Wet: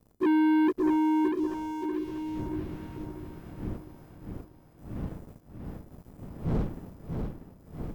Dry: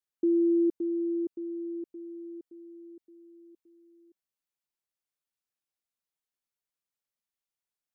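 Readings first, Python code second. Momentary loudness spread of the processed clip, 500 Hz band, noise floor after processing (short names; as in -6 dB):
22 LU, -1.0 dB, -57 dBFS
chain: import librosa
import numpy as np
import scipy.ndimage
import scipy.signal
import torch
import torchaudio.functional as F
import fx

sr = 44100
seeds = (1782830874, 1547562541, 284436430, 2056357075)

p1 = fx.freq_snap(x, sr, grid_st=3)
p2 = fx.dmg_wind(p1, sr, seeds[0], corner_hz=210.0, level_db=-49.0)
p3 = fx.leveller(p2, sr, passes=3)
y = p3 + fx.echo_feedback(p3, sr, ms=641, feedback_pct=43, wet_db=-5.5, dry=0)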